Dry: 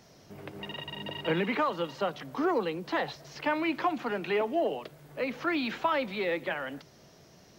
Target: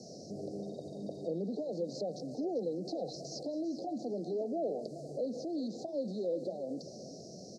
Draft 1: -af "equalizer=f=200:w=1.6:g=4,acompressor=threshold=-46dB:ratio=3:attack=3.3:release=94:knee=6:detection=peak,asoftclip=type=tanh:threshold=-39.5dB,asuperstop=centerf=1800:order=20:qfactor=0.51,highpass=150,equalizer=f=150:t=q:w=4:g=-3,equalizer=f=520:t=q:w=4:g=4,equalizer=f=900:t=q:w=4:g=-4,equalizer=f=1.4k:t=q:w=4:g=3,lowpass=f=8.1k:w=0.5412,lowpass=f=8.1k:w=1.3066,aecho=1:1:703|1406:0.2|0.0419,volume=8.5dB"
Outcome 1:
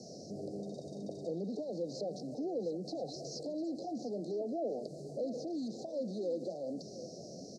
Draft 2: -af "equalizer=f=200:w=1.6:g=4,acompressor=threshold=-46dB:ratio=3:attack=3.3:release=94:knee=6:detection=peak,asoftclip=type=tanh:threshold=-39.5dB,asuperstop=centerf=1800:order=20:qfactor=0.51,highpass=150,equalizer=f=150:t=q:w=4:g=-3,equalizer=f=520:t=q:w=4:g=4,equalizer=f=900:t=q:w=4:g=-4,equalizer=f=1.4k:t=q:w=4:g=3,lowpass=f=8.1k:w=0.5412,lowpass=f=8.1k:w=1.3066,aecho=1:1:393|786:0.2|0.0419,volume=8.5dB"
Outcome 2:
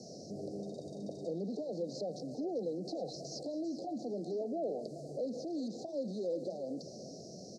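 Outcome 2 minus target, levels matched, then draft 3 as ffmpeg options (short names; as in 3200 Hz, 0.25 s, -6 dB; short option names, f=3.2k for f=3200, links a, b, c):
soft clip: distortion +12 dB
-af "equalizer=f=200:w=1.6:g=4,acompressor=threshold=-46dB:ratio=3:attack=3.3:release=94:knee=6:detection=peak,asoftclip=type=tanh:threshold=-32dB,asuperstop=centerf=1800:order=20:qfactor=0.51,highpass=150,equalizer=f=150:t=q:w=4:g=-3,equalizer=f=520:t=q:w=4:g=4,equalizer=f=900:t=q:w=4:g=-4,equalizer=f=1.4k:t=q:w=4:g=3,lowpass=f=8.1k:w=0.5412,lowpass=f=8.1k:w=1.3066,aecho=1:1:393|786:0.2|0.0419,volume=8.5dB"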